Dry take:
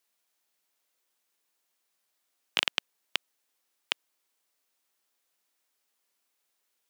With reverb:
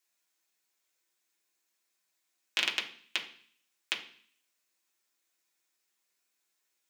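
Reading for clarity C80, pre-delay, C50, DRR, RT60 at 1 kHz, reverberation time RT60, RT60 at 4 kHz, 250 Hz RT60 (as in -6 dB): 15.0 dB, 3 ms, 11.0 dB, -2.0 dB, 0.50 s, 0.50 s, 0.60 s, 0.65 s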